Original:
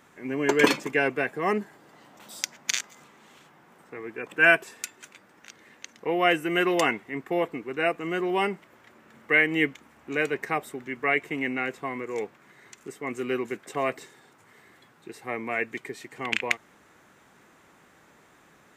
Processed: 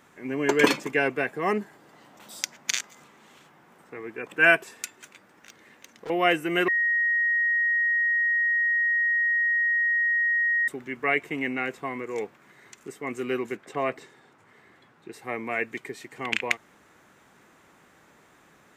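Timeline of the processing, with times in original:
4.97–6.1 overloaded stage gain 35.5 dB
6.68–10.68 bleep 1880 Hz -20.5 dBFS
13.55–15.13 high shelf 5900 Hz -11.5 dB

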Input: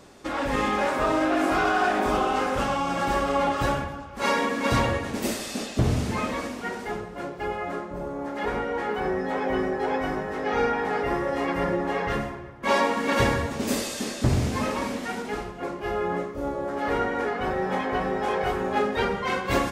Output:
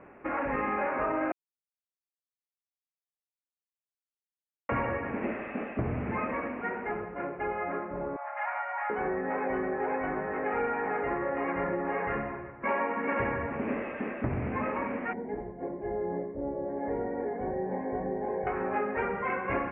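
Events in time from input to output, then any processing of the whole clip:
1.32–4.69 mute
8.16–8.9 brick-wall FIR high-pass 570 Hz
15.13–18.47 running mean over 34 samples
whole clip: steep low-pass 2500 Hz 72 dB/oct; low shelf 160 Hz -8 dB; compressor 2.5:1, threshold -29 dBFS

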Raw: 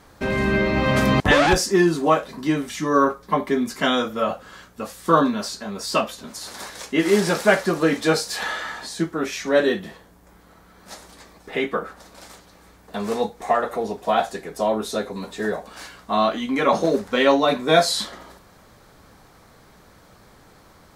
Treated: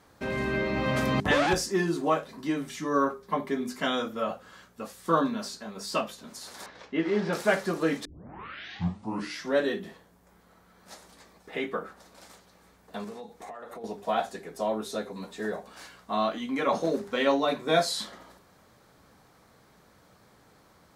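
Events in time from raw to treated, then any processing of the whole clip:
6.66–7.33 air absorption 230 m
8.05 tape start 1.52 s
13.04–13.84 compressor 16:1, threshold -30 dBFS
whole clip: HPF 130 Hz 6 dB/oct; low shelf 260 Hz +4.5 dB; notches 50/100/150/200/250/300/350/400 Hz; gain -8 dB

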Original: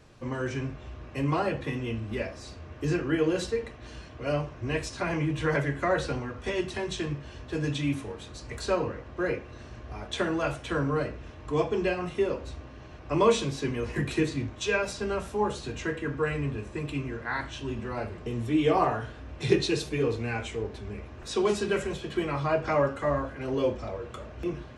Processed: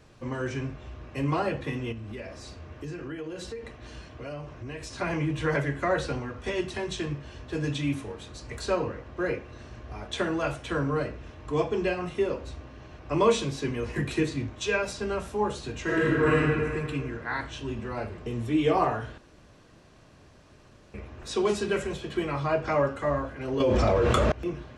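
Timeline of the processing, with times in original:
1.92–4.94 compressor 4:1, threshold -35 dBFS
15.83–16.4 reverb throw, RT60 1.9 s, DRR -8 dB
19.18–20.94 room tone
23.6–24.32 fast leveller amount 100%

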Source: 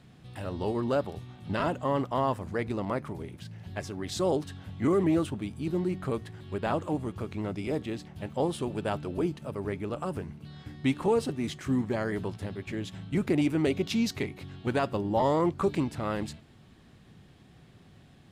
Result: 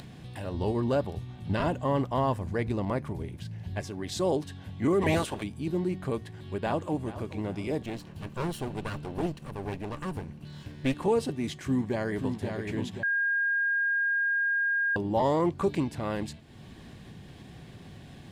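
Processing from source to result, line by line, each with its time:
0.54–3.81 low shelf 100 Hz +11 dB
5.01–5.42 spectral limiter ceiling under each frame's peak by 21 dB
6.57–7.32 echo throw 0.43 s, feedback 40%, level -14.5 dB
7.83–10.94 minimum comb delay 0.7 ms
11.65–12.38 echo throw 0.53 s, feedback 55%, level -5.5 dB
13.03–14.96 bleep 1620 Hz -23.5 dBFS
whole clip: notch 1300 Hz, Q 7.7; upward compressor, threshold -37 dBFS

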